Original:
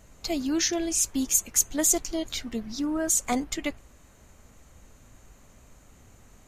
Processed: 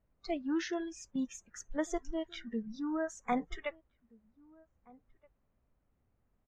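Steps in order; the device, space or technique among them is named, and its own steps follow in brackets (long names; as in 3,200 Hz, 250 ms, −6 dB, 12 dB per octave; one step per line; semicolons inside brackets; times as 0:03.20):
low-pass filter 1,500 Hz 6 dB per octave
noise reduction from a noise print of the clip's start 22 dB
dynamic equaliser 330 Hz, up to −5 dB, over −40 dBFS, Q 0.72
shout across a valley (high-frequency loss of the air 170 metres; slap from a distant wall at 270 metres, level −25 dB)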